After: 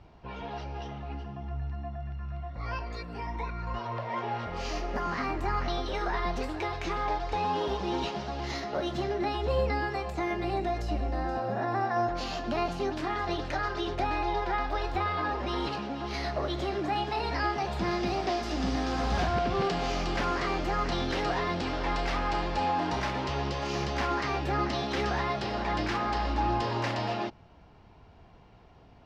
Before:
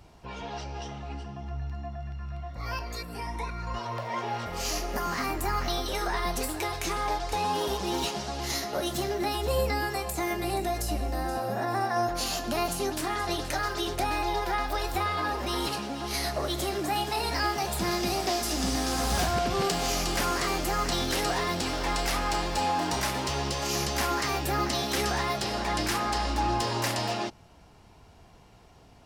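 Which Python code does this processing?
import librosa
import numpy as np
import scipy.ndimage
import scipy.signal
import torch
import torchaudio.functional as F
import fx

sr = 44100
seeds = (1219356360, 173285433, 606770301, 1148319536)

y = fx.air_absorb(x, sr, metres=210.0)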